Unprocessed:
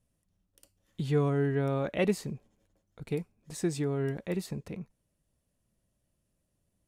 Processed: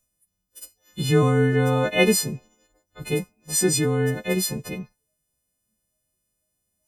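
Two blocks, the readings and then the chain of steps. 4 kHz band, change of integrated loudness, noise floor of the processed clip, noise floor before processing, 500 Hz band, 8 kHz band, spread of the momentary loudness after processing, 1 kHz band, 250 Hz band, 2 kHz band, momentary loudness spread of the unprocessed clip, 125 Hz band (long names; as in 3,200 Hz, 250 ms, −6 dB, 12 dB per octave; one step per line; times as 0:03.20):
+17.5 dB, +9.5 dB, −78 dBFS, −79 dBFS, +8.5 dB, +21.0 dB, 17 LU, +11.0 dB, +8.0 dB, +14.0 dB, 16 LU, +8.5 dB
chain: every partial snapped to a pitch grid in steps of 3 semitones
noise reduction from a noise print of the clip's start 13 dB
level +9 dB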